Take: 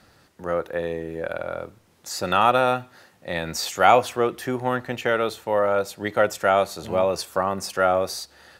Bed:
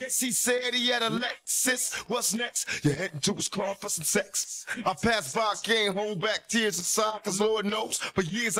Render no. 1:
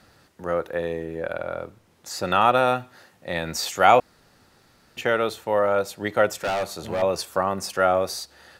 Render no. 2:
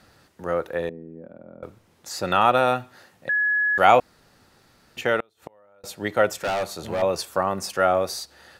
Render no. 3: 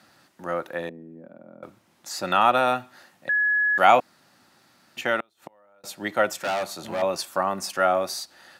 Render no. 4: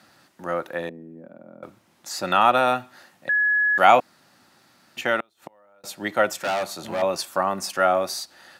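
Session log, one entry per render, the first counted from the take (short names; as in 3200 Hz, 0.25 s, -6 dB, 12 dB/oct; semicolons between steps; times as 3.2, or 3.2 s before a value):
1.05–2.57 high shelf 4600 Hz -3.5 dB; 4–4.97 room tone; 6.3–7.02 hard clip -22 dBFS
0.89–1.63 band-pass 220 Hz, Q 2.7; 3.29–3.78 bleep 1690 Hz -18.5 dBFS; 5.2–5.84 flipped gate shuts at -22 dBFS, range -35 dB
HPF 180 Hz 12 dB/oct; bell 450 Hz -13.5 dB 0.26 oct
gain +1.5 dB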